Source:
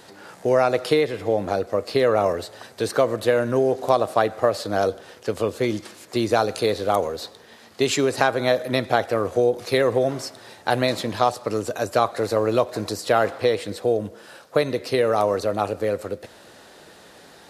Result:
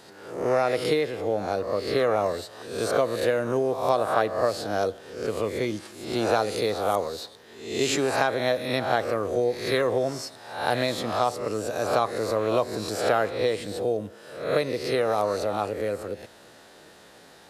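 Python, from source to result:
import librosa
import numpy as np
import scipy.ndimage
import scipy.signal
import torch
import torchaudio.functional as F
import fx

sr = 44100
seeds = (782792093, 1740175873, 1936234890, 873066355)

y = fx.spec_swells(x, sr, rise_s=0.65)
y = y * 10.0 ** (-5.5 / 20.0)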